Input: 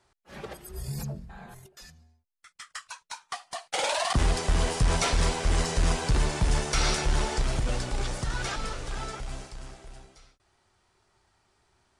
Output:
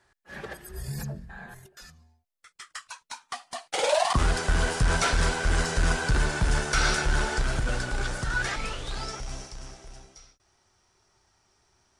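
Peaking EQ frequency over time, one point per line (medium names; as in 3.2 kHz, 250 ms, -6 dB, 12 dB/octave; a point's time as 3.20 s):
peaking EQ +13 dB 0.23 oct
1.72 s 1.7 kHz
2.88 s 250 Hz
3.61 s 250 Hz
4.28 s 1.5 kHz
8.38 s 1.5 kHz
9.12 s 5.7 kHz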